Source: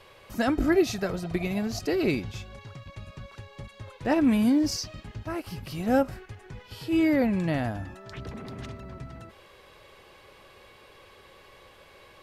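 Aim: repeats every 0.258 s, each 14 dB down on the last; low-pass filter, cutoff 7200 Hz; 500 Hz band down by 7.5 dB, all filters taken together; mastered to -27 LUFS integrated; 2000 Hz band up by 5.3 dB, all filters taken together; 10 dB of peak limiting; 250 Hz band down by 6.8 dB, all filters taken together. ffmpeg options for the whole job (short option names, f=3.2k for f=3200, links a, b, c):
-af "lowpass=7.2k,equalizer=f=250:t=o:g=-6,equalizer=f=500:t=o:g=-8.5,equalizer=f=2k:t=o:g=7,alimiter=limit=-22.5dB:level=0:latency=1,aecho=1:1:258|516:0.2|0.0399,volume=7.5dB"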